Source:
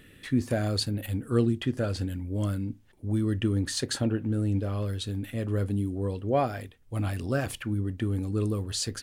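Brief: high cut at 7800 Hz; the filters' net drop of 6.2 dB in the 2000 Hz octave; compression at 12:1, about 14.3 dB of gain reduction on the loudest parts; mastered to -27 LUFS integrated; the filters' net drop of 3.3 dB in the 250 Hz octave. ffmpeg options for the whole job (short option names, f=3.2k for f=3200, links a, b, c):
-af "lowpass=7.8k,equalizer=f=250:t=o:g=-4,equalizer=f=2k:t=o:g=-8.5,acompressor=threshold=-35dB:ratio=12,volume=13dB"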